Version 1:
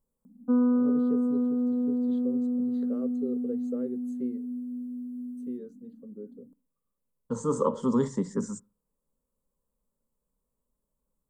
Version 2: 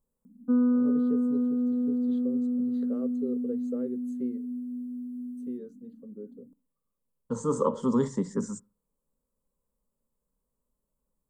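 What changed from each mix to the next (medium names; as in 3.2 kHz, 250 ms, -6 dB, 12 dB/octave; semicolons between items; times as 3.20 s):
background: add high-order bell 770 Hz -8.5 dB 1.2 oct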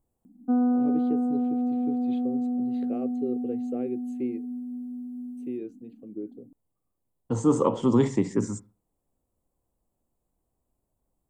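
second voice: send +7.0 dB; background: send off; master: remove static phaser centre 490 Hz, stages 8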